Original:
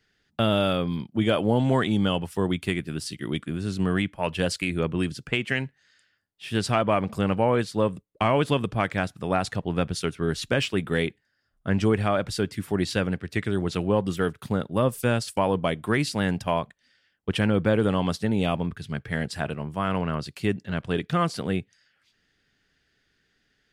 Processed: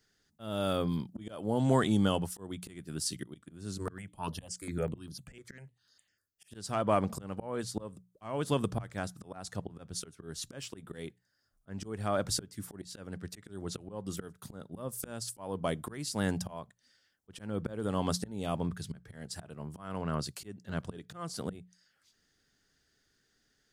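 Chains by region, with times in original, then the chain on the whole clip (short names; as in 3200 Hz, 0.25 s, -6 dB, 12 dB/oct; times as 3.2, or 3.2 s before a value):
3.78–6.51 bell 11000 Hz +3 dB 0.86 oct + step phaser 10 Hz 760–7700 Hz
whole clip: EQ curve 1300 Hz 0 dB, 2500 Hz -7 dB, 6300 Hz +8 dB; auto swell 0.43 s; notches 60/120/180 Hz; gain -3.5 dB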